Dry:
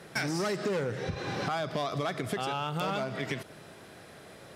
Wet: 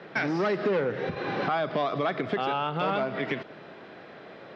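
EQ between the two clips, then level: air absorption 200 m; three-band isolator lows -16 dB, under 170 Hz, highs -19 dB, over 4800 Hz; high shelf 9300 Hz +6 dB; +6.0 dB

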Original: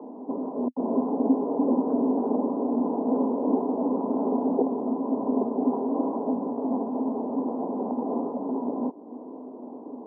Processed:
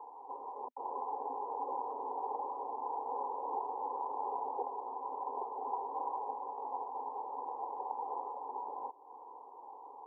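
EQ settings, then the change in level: dynamic EQ 1000 Hz, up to -4 dB, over -47 dBFS, Q 1.6; ladder high-pass 720 Hz, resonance 55%; fixed phaser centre 970 Hz, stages 8; +6.0 dB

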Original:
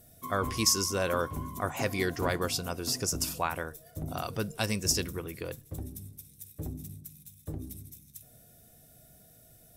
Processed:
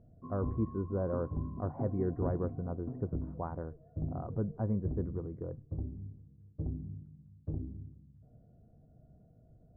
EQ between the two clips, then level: Gaussian blur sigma 8.8 samples; air absorption 390 m; low shelf 340 Hz +5.5 dB; -3.0 dB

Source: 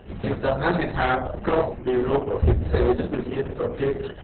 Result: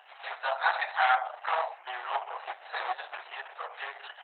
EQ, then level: elliptic high-pass 750 Hz, stop band 70 dB; 0.0 dB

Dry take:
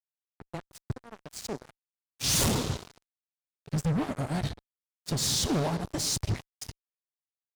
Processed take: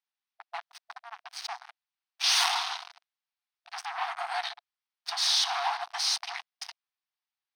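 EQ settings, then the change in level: polynomial smoothing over 15 samples; brick-wall FIR high-pass 680 Hz; +7.0 dB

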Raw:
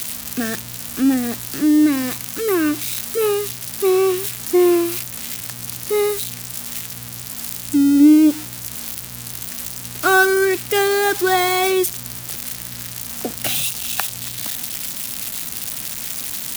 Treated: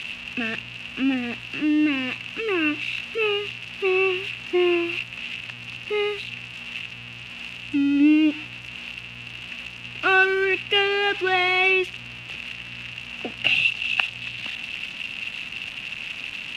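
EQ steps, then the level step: synth low-pass 2700 Hz, resonance Q 12; -7.0 dB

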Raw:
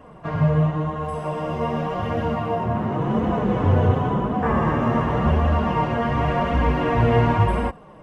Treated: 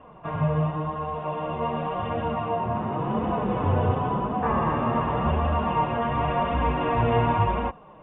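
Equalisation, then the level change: rippled Chebyshev low-pass 3700 Hz, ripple 6 dB; 0.0 dB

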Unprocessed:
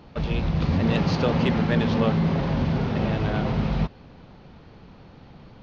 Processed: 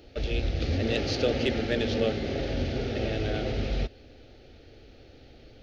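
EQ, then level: high shelf 4600 Hz +6 dB; fixed phaser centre 420 Hz, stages 4; 0.0 dB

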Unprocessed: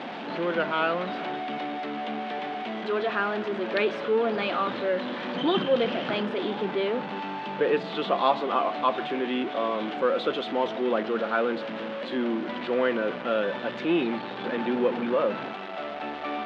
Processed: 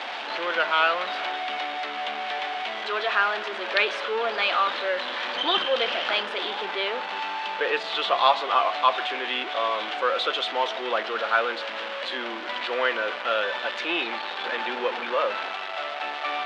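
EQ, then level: HPF 760 Hz 12 dB/oct; high shelf 3400 Hz +8 dB; +5.0 dB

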